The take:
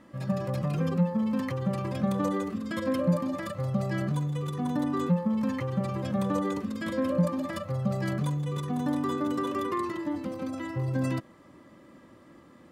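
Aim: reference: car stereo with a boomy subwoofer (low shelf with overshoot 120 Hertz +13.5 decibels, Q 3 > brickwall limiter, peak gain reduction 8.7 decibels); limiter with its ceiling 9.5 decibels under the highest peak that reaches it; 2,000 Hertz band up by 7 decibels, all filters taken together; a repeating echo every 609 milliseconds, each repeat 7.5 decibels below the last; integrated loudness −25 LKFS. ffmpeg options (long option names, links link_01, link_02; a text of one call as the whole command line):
ffmpeg -i in.wav -af "equalizer=frequency=2000:width_type=o:gain=8.5,alimiter=limit=-23dB:level=0:latency=1,lowshelf=frequency=120:width_type=q:width=3:gain=13.5,aecho=1:1:609|1218|1827|2436|3045:0.422|0.177|0.0744|0.0312|0.0131,volume=9.5dB,alimiter=limit=-16dB:level=0:latency=1" out.wav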